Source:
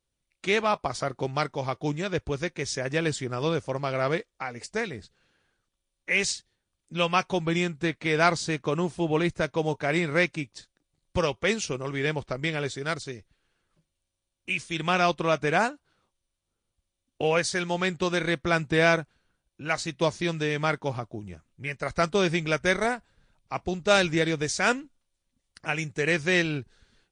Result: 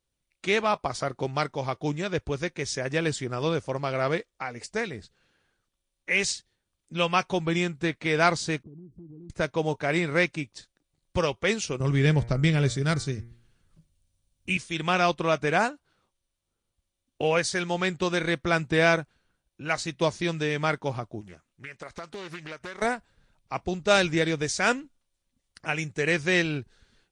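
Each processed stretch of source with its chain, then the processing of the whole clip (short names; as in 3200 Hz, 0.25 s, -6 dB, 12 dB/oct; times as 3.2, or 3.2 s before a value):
8.63–9.3 inverse Chebyshev low-pass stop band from 660 Hz + compressor 8:1, threshold -43 dBFS
11.8–14.57 tone controls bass +14 dB, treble +5 dB + de-hum 116.9 Hz, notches 20
21.21–22.82 low shelf 230 Hz -11 dB + compressor 5:1, threshold -36 dBFS + Doppler distortion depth 0.45 ms
whole clip: dry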